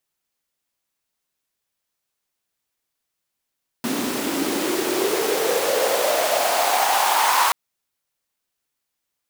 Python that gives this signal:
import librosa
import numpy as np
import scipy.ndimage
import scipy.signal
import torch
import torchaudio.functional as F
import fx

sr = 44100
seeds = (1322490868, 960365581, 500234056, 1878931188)

y = fx.riser_noise(sr, seeds[0], length_s=3.68, colour='pink', kind='highpass', start_hz=240.0, end_hz=1000.0, q=5.5, swell_db=7.5, law='exponential')